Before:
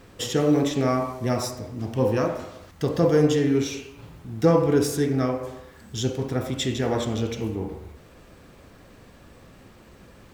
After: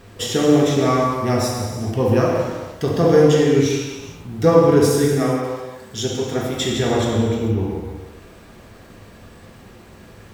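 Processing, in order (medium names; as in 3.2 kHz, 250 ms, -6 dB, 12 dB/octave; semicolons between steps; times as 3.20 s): 5.13–6.55 s: high-pass 190 Hz 6 dB/octave; 7.15–7.59 s: peaking EQ 6.4 kHz -13 dB 2.2 oct; gated-style reverb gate 480 ms falling, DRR -1 dB; trim +3 dB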